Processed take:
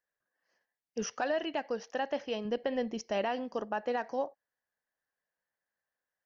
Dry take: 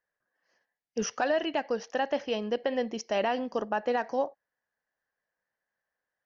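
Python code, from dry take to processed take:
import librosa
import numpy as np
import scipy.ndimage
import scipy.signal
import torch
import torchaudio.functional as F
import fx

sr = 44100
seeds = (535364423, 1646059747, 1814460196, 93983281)

y = fx.low_shelf(x, sr, hz=160.0, db=10.5, at=(2.45, 3.22))
y = F.gain(torch.from_numpy(y), -4.5).numpy()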